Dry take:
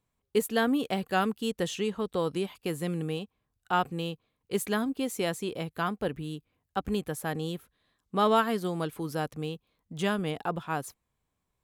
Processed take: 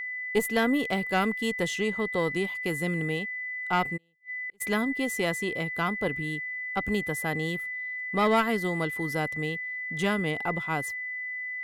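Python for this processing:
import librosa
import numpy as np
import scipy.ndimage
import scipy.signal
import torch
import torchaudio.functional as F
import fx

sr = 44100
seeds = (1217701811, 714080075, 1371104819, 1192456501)

y = fx.diode_clip(x, sr, knee_db=-20.5)
y = y + 10.0 ** (-34.0 / 20.0) * np.sin(2.0 * np.pi * 2000.0 * np.arange(len(y)) / sr)
y = fx.gate_flip(y, sr, shuts_db=-33.0, range_db=-39, at=(3.96, 4.6), fade=0.02)
y = y * librosa.db_to_amplitude(2.0)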